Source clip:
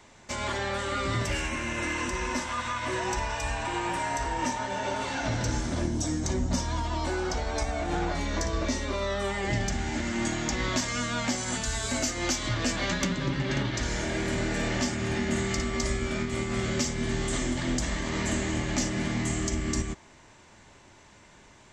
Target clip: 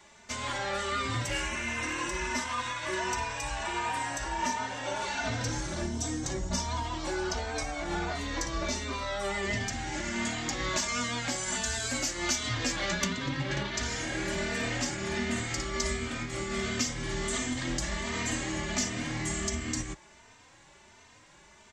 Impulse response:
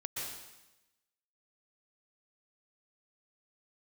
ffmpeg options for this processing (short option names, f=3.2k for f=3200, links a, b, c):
-filter_complex "[0:a]tiltshelf=f=640:g=-3,asplit=2[a][b];[b]adelay=3.1,afreqshift=1.4[c];[a][c]amix=inputs=2:normalize=1"